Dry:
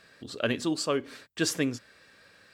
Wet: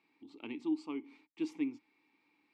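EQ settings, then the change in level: vowel filter u; low shelf 210 Hz -6.5 dB; +1.0 dB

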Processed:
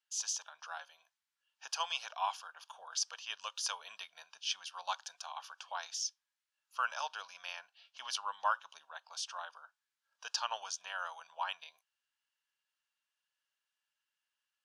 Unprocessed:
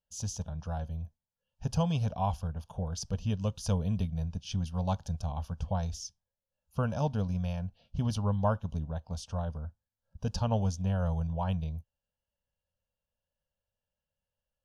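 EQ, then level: HPF 1200 Hz 24 dB/oct; LPF 9500 Hz 12 dB/oct; high shelf 5200 Hz -7 dB; +9.5 dB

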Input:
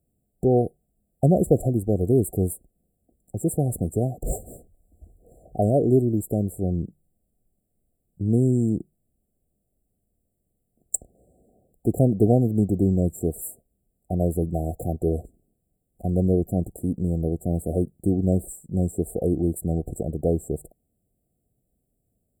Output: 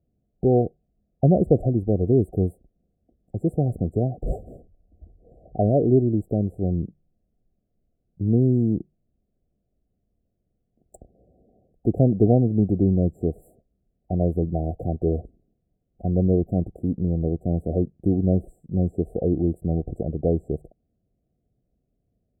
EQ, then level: air absorption 430 m; +1.5 dB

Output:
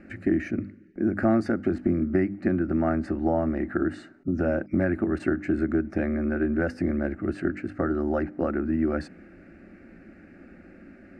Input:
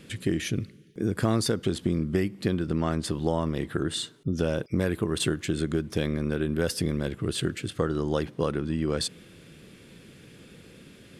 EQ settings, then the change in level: LPF 1700 Hz 12 dB/oct; notches 50/100/150/200/250/300 Hz; fixed phaser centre 680 Hz, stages 8; +6.5 dB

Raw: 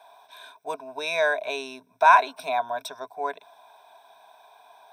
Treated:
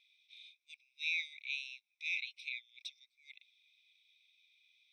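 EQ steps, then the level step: brick-wall FIR high-pass 2000 Hz; air absorption 190 m; -2.0 dB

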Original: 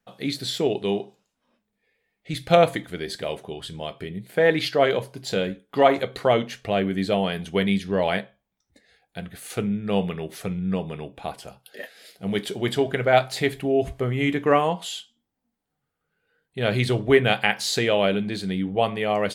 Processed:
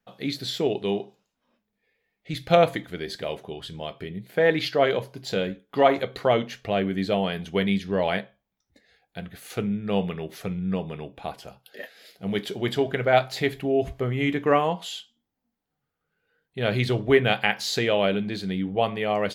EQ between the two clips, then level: bell 8900 Hz -9.5 dB 0.43 oct; -1.5 dB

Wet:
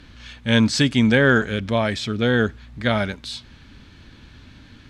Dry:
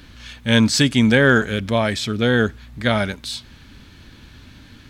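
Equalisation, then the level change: air absorption 52 m; -1.5 dB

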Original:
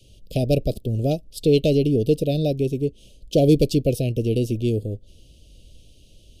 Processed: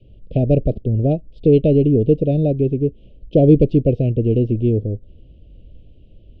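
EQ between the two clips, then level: LPF 2800 Hz 24 dB/oct; tilt shelf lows +6 dB; 0.0 dB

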